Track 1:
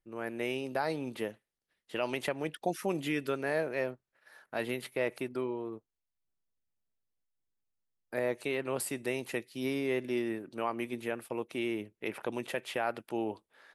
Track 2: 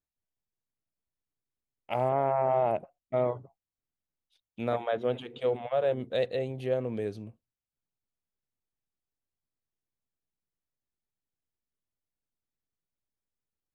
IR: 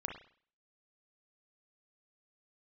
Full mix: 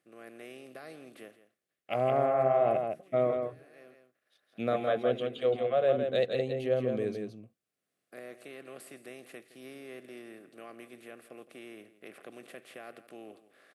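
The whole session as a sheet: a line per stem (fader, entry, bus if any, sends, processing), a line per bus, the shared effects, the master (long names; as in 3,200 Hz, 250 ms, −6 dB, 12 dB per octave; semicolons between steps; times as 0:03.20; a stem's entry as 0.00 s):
−16.5 dB, 0.00 s, no send, echo send −15.5 dB, compressor on every frequency bin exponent 0.6; automatic ducking −19 dB, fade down 0.65 s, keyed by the second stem
+0.5 dB, 0.00 s, no send, echo send −5.5 dB, no processing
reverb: not used
echo: single-tap delay 165 ms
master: high-pass filter 130 Hz; Butterworth band-reject 910 Hz, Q 3.6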